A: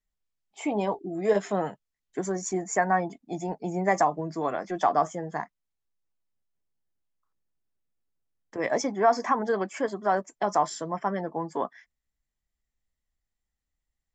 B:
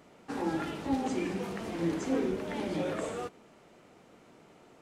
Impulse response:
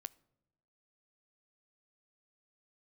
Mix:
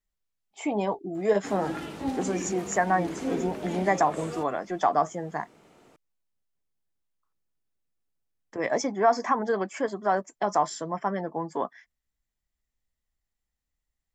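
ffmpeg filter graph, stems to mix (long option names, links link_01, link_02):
-filter_complex "[0:a]volume=0dB,asplit=2[link_01][link_02];[1:a]highshelf=frequency=7000:gain=4.5,adelay=1150,volume=0dB[link_03];[link_02]apad=whole_len=262881[link_04];[link_03][link_04]sidechaincompress=threshold=-26dB:ratio=3:attack=40:release=230[link_05];[link_01][link_05]amix=inputs=2:normalize=0"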